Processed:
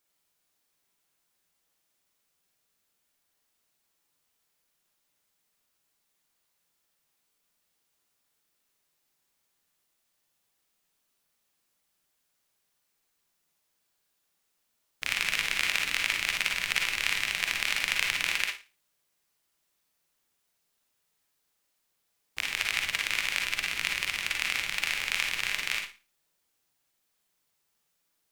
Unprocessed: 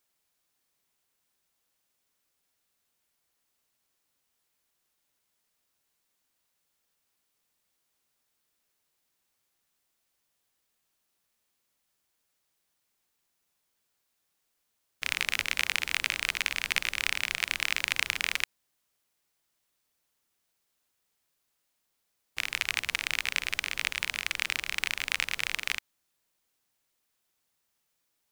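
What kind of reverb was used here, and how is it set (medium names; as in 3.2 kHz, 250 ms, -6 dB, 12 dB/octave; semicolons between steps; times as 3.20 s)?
Schroeder reverb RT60 0.31 s, DRR 1 dB; trim -1 dB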